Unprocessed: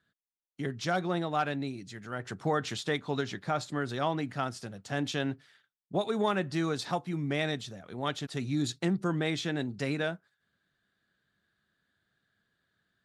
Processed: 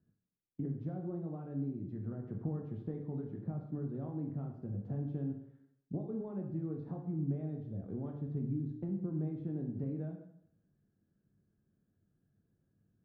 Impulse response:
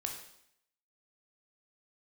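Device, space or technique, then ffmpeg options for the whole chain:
television next door: -filter_complex "[0:a]acompressor=threshold=0.00891:ratio=5,lowpass=300[s0];[1:a]atrim=start_sample=2205[s1];[s0][s1]afir=irnorm=-1:irlink=0,volume=2.66"

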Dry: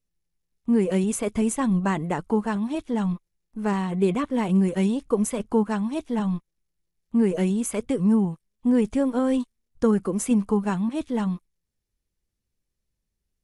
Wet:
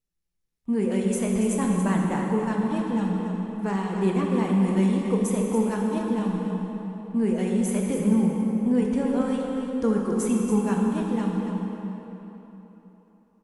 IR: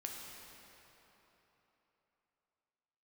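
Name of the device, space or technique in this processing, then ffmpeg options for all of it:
cave: -filter_complex "[0:a]aecho=1:1:282:0.355[s0];[1:a]atrim=start_sample=2205[s1];[s0][s1]afir=irnorm=-1:irlink=0"

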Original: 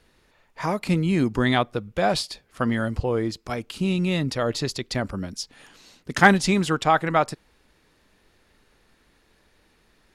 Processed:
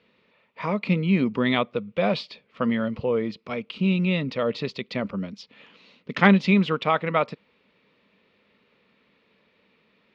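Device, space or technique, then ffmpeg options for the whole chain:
kitchen radio: -af "highpass=190,equalizer=f=200:t=q:w=4:g=6,equalizer=f=330:t=q:w=4:g=-8,equalizer=f=490:t=q:w=4:g=3,equalizer=f=770:t=q:w=4:g=-9,equalizer=f=1600:t=q:w=4:g=-9,equalizer=f=2400:t=q:w=4:g=4,lowpass=f=3600:w=0.5412,lowpass=f=3600:w=1.3066,volume=1.12"

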